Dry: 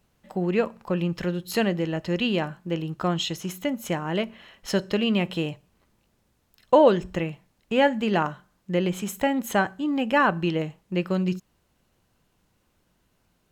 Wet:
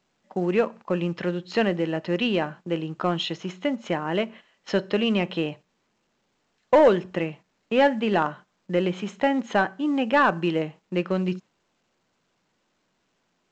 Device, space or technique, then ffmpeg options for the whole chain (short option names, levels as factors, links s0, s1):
telephone: -af "agate=range=0.178:threshold=0.00794:ratio=16:detection=peak,highpass=250,lowpass=3500,equalizer=f=130:t=o:w=1.4:g=4,asoftclip=type=tanh:threshold=0.282,volume=1.33" -ar 16000 -c:a pcm_alaw